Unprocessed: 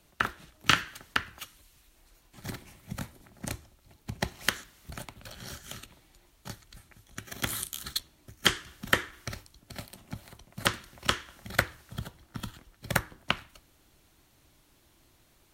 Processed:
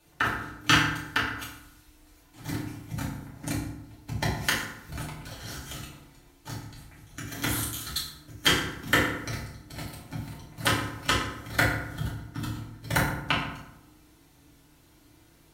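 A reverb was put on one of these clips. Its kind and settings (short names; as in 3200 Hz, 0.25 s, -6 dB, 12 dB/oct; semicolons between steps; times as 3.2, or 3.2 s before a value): FDN reverb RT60 0.84 s, low-frequency decay 1.3×, high-frequency decay 0.6×, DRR -7 dB; gain -3.5 dB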